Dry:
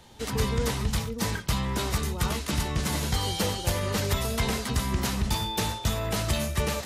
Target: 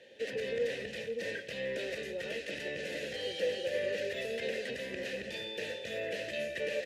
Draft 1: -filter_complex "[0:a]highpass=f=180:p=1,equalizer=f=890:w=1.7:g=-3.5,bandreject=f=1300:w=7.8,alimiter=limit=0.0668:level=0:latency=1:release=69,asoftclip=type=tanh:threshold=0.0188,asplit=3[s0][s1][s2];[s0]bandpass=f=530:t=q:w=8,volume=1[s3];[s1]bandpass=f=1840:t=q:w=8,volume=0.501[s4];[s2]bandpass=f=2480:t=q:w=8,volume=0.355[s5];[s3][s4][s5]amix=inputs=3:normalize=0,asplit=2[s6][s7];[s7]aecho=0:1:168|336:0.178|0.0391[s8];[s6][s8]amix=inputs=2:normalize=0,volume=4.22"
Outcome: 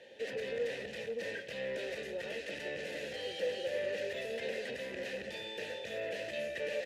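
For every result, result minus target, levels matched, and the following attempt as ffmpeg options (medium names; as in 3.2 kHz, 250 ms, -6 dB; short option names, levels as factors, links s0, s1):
saturation: distortion +8 dB; 1 kHz band +3.5 dB
-filter_complex "[0:a]highpass=f=180:p=1,equalizer=f=890:w=1.7:g=-3.5,bandreject=f=1300:w=7.8,alimiter=limit=0.0668:level=0:latency=1:release=69,asoftclip=type=tanh:threshold=0.0422,asplit=3[s0][s1][s2];[s0]bandpass=f=530:t=q:w=8,volume=1[s3];[s1]bandpass=f=1840:t=q:w=8,volume=0.501[s4];[s2]bandpass=f=2480:t=q:w=8,volume=0.355[s5];[s3][s4][s5]amix=inputs=3:normalize=0,asplit=2[s6][s7];[s7]aecho=0:1:168|336:0.178|0.0391[s8];[s6][s8]amix=inputs=2:normalize=0,volume=4.22"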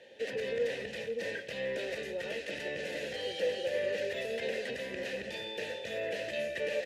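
1 kHz band +3.5 dB
-filter_complex "[0:a]highpass=f=180:p=1,equalizer=f=890:w=1.7:g=-10.5,bandreject=f=1300:w=7.8,alimiter=limit=0.0668:level=0:latency=1:release=69,asoftclip=type=tanh:threshold=0.0422,asplit=3[s0][s1][s2];[s0]bandpass=f=530:t=q:w=8,volume=1[s3];[s1]bandpass=f=1840:t=q:w=8,volume=0.501[s4];[s2]bandpass=f=2480:t=q:w=8,volume=0.355[s5];[s3][s4][s5]amix=inputs=3:normalize=0,asplit=2[s6][s7];[s7]aecho=0:1:168|336:0.178|0.0391[s8];[s6][s8]amix=inputs=2:normalize=0,volume=4.22"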